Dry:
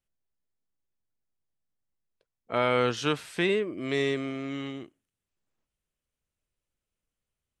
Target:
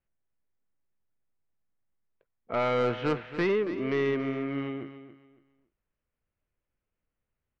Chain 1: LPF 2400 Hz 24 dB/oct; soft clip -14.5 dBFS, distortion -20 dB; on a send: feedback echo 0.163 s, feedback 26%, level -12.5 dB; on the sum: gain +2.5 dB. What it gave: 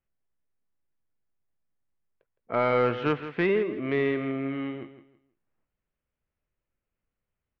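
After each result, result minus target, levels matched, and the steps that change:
echo 0.116 s early; soft clip: distortion -9 dB
change: feedback echo 0.279 s, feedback 26%, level -12.5 dB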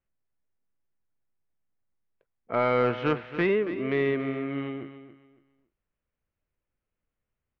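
soft clip: distortion -9 dB
change: soft clip -22.5 dBFS, distortion -11 dB

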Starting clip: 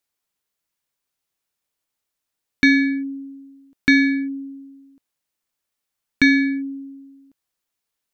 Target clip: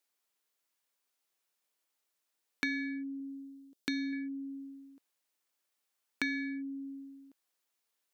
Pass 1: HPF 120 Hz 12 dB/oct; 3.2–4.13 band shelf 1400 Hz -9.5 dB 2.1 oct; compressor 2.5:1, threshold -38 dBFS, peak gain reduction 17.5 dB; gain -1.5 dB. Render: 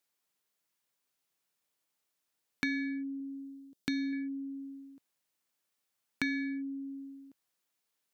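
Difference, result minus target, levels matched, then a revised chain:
125 Hz band +7.0 dB
HPF 280 Hz 12 dB/oct; 3.2–4.13 band shelf 1400 Hz -9.5 dB 2.1 oct; compressor 2.5:1, threshold -38 dBFS, peak gain reduction 17.5 dB; gain -1.5 dB

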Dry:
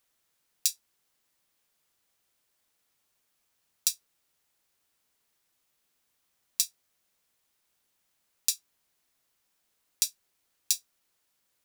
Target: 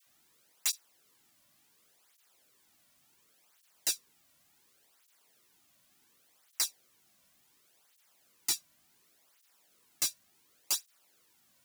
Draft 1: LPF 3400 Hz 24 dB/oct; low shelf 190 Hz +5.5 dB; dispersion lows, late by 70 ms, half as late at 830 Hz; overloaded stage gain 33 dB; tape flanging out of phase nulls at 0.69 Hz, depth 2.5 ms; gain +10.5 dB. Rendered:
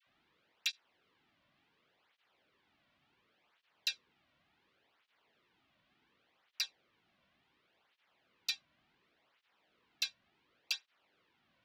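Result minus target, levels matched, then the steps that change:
4000 Hz band +4.5 dB
remove: LPF 3400 Hz 24 dB/oct

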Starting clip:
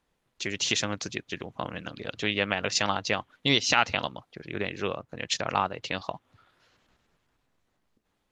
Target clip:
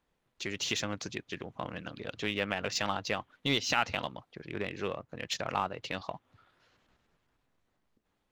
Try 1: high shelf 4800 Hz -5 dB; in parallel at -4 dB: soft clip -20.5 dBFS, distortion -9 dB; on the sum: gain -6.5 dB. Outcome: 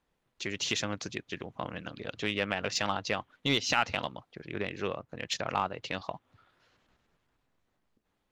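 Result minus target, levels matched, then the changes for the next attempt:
soft clip: distortion -6 dB
change: soft clip -30.5 dBFS, distortion -3 dB

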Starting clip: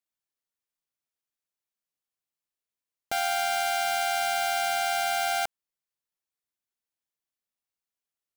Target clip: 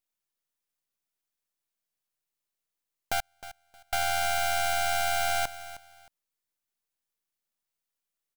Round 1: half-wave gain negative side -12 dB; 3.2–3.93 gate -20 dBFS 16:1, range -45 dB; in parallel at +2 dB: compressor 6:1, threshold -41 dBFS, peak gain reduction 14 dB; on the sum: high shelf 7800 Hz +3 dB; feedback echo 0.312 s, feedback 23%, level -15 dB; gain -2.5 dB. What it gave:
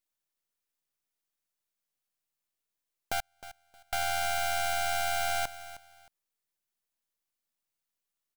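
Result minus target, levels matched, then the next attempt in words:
compressor: peak gain reduction +9 dB
half-wave gain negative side -12 dB; 3.2–3.93 gate -20 dBFS 16:1, range -45 dB; in parallel at +2 dB: compressor 6:1, threshold -30 dBFS, peak gain reduction 5 dB; on the sum: high shelf 7800 Hz +3 dB; feedback echo 0.312 s, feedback 23%, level -15 dB; gain -2.5 dB

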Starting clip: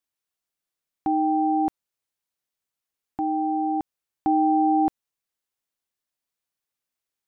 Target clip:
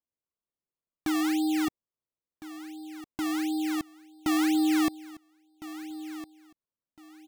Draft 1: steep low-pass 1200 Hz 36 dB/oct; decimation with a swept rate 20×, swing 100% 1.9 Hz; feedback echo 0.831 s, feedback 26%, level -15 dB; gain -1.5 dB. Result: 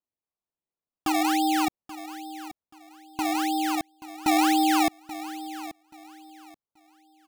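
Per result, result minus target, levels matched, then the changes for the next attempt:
1000 Hz band +9.5 dB; echo 0.527 s early
add after steep low-pass: bell 790 Hz -15 dB 0.21 oct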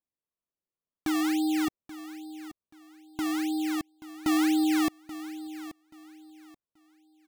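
echo 0.527 s early
change: feedback echo 1.358 s, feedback 26%, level -15 dB

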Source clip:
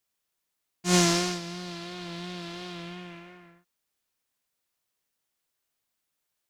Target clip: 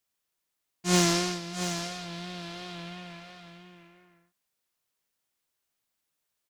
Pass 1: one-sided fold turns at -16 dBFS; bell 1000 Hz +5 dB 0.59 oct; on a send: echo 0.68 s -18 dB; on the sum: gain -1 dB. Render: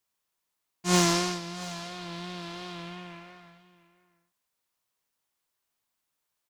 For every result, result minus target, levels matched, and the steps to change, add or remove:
echo-to-direct -9 dB; 1000 Hz band +2.5 dB
change: echo 0.68 s -9 dB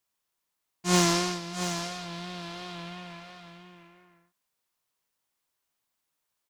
1000 Hz band +2.5 dB
remove: bell 1000 Hz +5 dB 0.59 oct

